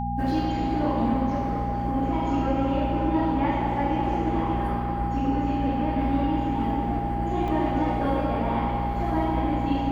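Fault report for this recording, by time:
hum 60 Hz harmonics 4 -30 dBFS
tone 810 Hz -29 dBFS
7.48 gap 2.9 ms

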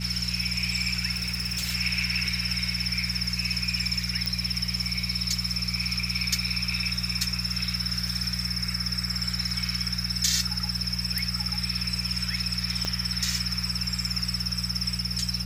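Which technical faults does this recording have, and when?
crackle 11/s -36 dBFS
hum 60 Hz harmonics 3 -33 dBFS
1.13–1.73 clipped -25 dBFS
4.26 pop
12.85 pop -13 dBFS

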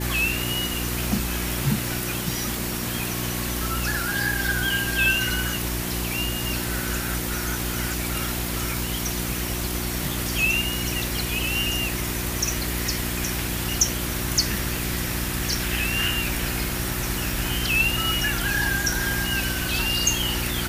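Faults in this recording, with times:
hum 60 Hz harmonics 6 -30 dBFS

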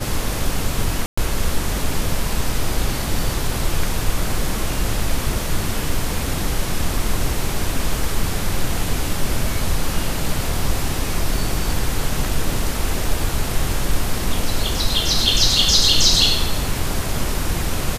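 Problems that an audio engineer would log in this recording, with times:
1.06–1.18 gap 0.115 s

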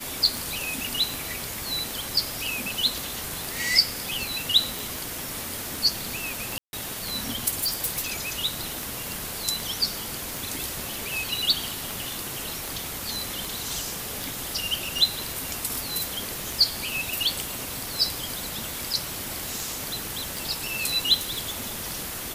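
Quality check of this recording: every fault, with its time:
tick 78 rpm
4.79 pop
6.58–6.73 gap 0.151 s
7.63–8.07 clipped -21.5 dBFS
14.24 pop
21.15–21.58 clipped -24 dBFS

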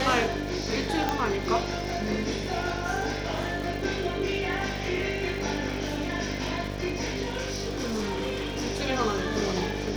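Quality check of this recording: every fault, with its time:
buzz 50 Hz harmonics 14 -34 dBFS
crackle 160/s -36 dBFS
1.09 pop -12 dBFS
7.22–8.66 clipped -26.5 dBFS

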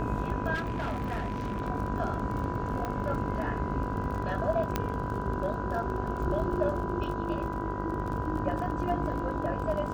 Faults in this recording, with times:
buzz 50 Hz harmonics 32 -36 dBFS
crackle 34/s -36 dBFS
tone 990 Hz -37 dBFS
0.54–1.62 clipped -28.5 dBFS
2.85 pop -20 dBFS
4.76 pop -13 dBFS

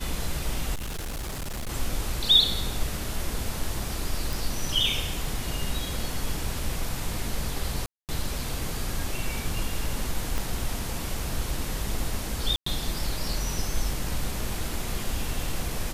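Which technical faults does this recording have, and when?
0.74–1.69 clipped -29.5 dBFS
4.33 pop
7.86–8.09 gap 0.228 s
10.38 pop
12.56–12.66 gap 0.104 s

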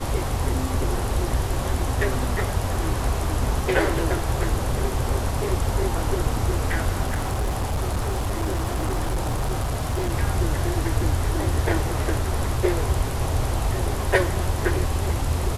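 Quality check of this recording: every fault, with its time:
7.02–10.1 clipped -20 dBFS

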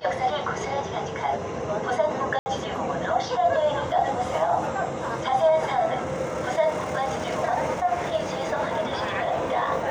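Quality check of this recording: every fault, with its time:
2.39–2.46 gap 70 ms

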